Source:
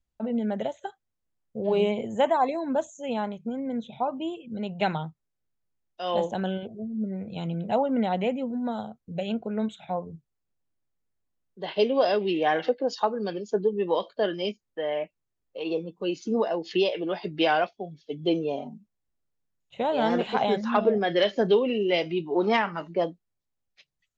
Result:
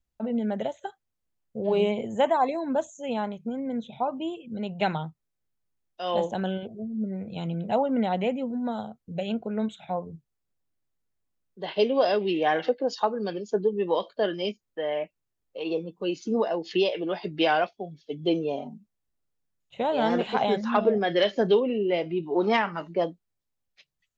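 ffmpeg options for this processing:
ffmpeg -i in.wav -filter_complex "[0:a]asettb=1/sr,asplit=3[link_01][link_02][link_03];[link_01]atrim=end=21.604[link_04];[link_02]atrim=start=21.6:end=22.23,asetpts=PTS-STARTPTS,afade=type=in:duration=0.004:curve=qsin,afade=type=out:start_time=0.626:duration=0.004:curve=qsin,lowpass=frequency=1300:poles=1[link_05];[link_03]atrim=start=22.226[link_06];[link_04][link_05]acrossfade=duration=0.004:curve1=hsin:curve2=qsin[link_07];[link_07][link_06]acrossfade=duration=0.004:curve1=qsin:curve2=hsin" out.wav

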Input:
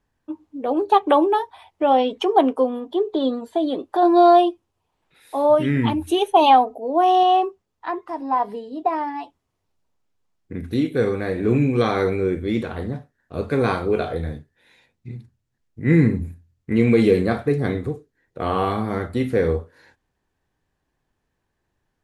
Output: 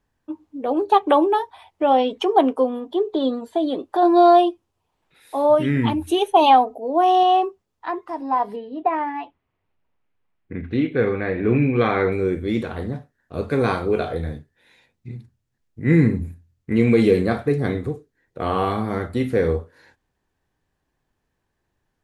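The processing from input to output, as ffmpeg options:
ffmpeg -i in.wav -filter_complex "[0:a]asettb=1/sr,asplit=3[link_01][link_02][link_03];[link_01]atrim=end=8.564[link_04];[link_02]atrim=start=8.56:end=12.12,asetpts=PTS-STARTPTS,afade=type=in:duration=0.004:curve=qsin,afade=type=out:start_time=3.556:duration=0.004:curve=qsin,lowpass=frequency=2400:width_type=q:width=1.6[link_05];[link_03]atrim=start=12.116[link_06];[link_04][link_05]acrossfade=duration=0.004:curve1=hsin:curve2=qsin[link_07];[link_07][link_06]acrossfade=duration=0.004:curve1=qsin:curve2=hsin" out.wav

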